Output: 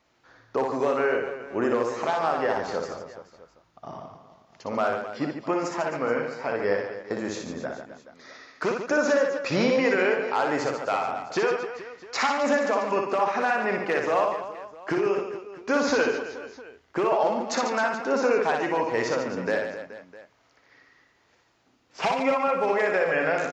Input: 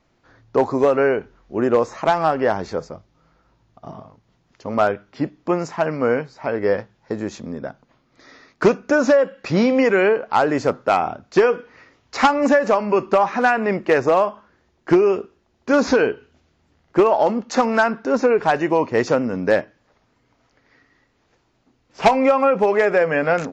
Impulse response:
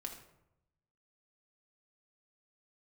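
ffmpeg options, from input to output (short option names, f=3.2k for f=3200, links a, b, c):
-filter_complex "[0:a]highpass=43,lowshelf=f=410:g=-10,alimiter=limit=-15dB:level=0:latency=1:release=371,asplit=2[a][b];[b]aecho=0:1:60|144|261.6|426.2|656.7:0.631|0.398|0.251|0.158|0.1[c];[a][c]amix=inputs=2:normalize=0"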